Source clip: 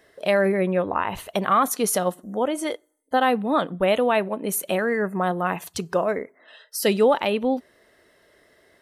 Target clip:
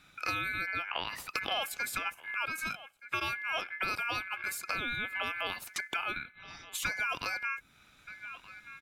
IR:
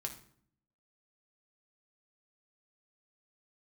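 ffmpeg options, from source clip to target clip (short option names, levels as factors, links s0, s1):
-filter_complex "[0:a]asplit=2[s0][s1];[s1]adelay=1224,volume=0.0631,highshelf=f=4000:g=-27.6[s2];[s0][s2]amix=inputs=2:normalize=0,aeval=exprs='val(0)*sin(2*PI*1900*n/s)':c=same,acrossover=split=620|7300[s3][s4][s5];[s3]acompressor=threshold=0.00708:ratio=4[s6];[s4]acompressor=threshold=0.02:ratio=4[s7];[s5]acompressor=threshold=0.00562:ratio=4[s8];[s6][s7][s8]amix=inputs=3:normalize=0"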